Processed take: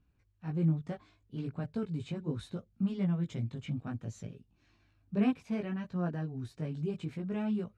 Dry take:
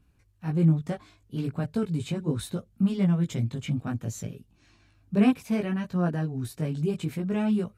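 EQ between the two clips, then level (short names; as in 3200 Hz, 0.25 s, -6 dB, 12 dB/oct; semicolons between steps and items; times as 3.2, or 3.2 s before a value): air absorption 86 m; -7.5 dB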